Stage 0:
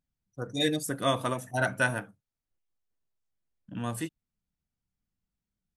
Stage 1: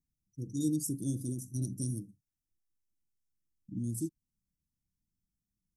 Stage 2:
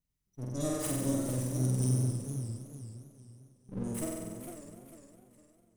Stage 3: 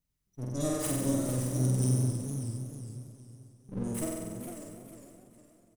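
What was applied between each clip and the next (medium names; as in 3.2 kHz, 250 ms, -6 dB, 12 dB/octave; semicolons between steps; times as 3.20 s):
Chebyshev band-stop 340–5300 Hz, order 4
comb filter that takes the minimum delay 1 ms; flutter echo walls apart 8.1 m, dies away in 1.4 s; modulated delay 455 ms, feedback 38%, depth 187 cents, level -9 dB
delay 587 ms -15 dB; trim +2 dB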